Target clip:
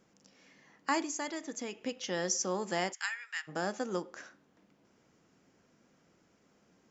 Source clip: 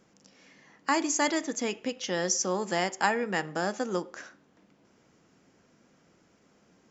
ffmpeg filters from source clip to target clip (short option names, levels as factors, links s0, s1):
-filter_complex "[0:a]asettb=1/sr,asplit=3[s0][s1][s2];[s0]atrim=end=1.004[s3];[s1]atrim=start=1:end=1.81,asetpts=PTS-STARTPTS,afade=t=in:d=0.004:c=qsin,afade=t=out:st=0.806:d=0.004:c=qsin,acompressor=threshold=0.0224:ratio=2.5[s4];[s2]atrim=start=1.806[s5];[s3][s4]acrossfade=d=0.004:c1=hsin:c2=qsin[s6];[s6][s5]acrossfade=d=0.004:c1=qsin:c2=hsin,asplit=3[s7][s8][s9];[s7]afade=t=out:st=2.92:d=0.02[s10];[s8]highpass=f=1500:w=0.5412,highpass=f=1500:w=1.3066,afade=t=in:st=2.92:d=0.02,afade=t=out:st=3.47:d=0.02[s11];[s9]afade=t=in:st=3.47:d=0.02[s12];[s10][s11][s12]amix=inputs=3:normalize=0,volume=0.596"